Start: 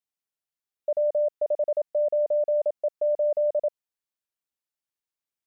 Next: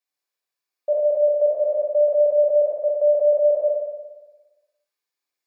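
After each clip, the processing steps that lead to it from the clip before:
high-pass filter 340 Hz 12 dB per octave
flutter between parallel walls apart 9.9 metres, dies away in 1.2 s
convolution reverb RT60 0.20 s, pre-delay 3 ms, DRR 1 dB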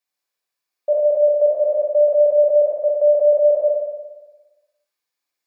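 mains-hum notches 50/100/150/200/250/300/350/400/450 Hz
level +3 dB

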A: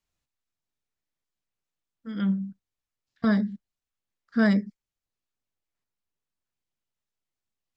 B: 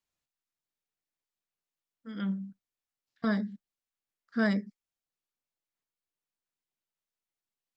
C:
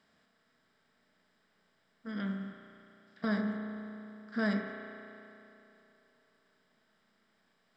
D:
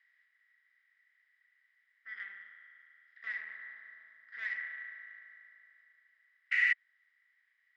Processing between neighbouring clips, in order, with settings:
low-shelf EQ 140 Hz −10.5 dB; level −3.5 dB
compressor on every frequency bin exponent 0.6; spring reverb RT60 3 s, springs 33 ms, chirp 50 ms, DRR 3 dB; level −5 dB
sound drawn into the spectrogram noise, 0:06.51–0:06.73, 1,300–3,000 Hz −28 dBFS; tube saturation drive 34 dB, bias 0.75; four-pole ladder band-pass 2,000 Hz, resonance 90%; level +8 dB

